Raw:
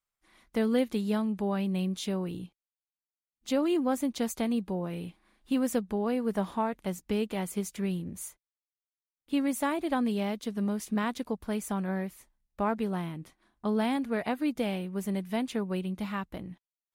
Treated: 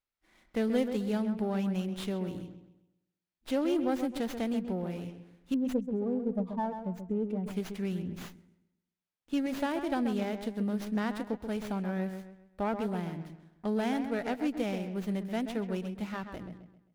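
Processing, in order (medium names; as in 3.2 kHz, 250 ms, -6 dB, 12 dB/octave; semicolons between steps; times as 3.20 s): 5.54–7.54 s: spectral contrast enhancement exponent 2.2; peaking EQ 1.1 kHz -8.5 dB 0.24 oct; on a send: feedback echo behind a low-pass 132 ms, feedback 36%, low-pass 2.3 kHz, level -8 dB; on the sum: sliding maximum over 5 samples; trim -2 dB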